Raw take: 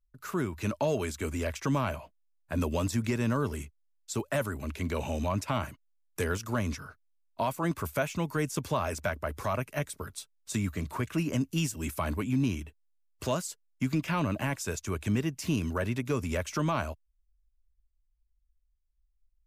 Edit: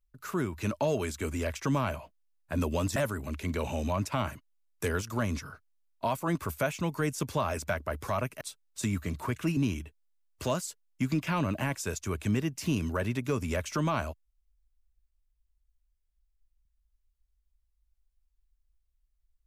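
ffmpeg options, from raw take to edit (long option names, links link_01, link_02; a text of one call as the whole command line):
ffmpeg -i in.wav -filter_complex "[0:a]asplit=4[link_01][link_02][link_03][link_04];[link_01]atrim=end=2.962[link_05];[link_02]atrim=start=4.318:end=9.772[link_06];[link_03]atrim=start=10.118:end=11.282[link_07];[link_04]atrim=start=12.378[link_08];[link_05][link_06]acrossfade=duration=0.004:curve1=hsin:curve2=hsin[link_09];[link_09][link_07]acrossfade=duration=0.004:curve1=hsin:curve2=hsin[link_10];[link_10][link_08]acrossfade=duration=0.004:curve1=hsin:curve2=hsin" out.wav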